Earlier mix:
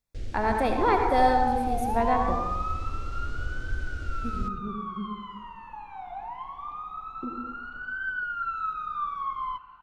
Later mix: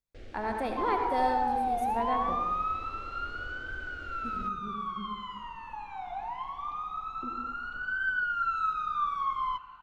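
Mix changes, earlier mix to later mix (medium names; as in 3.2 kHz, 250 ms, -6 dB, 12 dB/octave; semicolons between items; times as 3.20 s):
speech -7.0 dB; first sound: add tone controls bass -14 dB, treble -14 dB; second sound: add treble shelf 3.4 kHz +10 dB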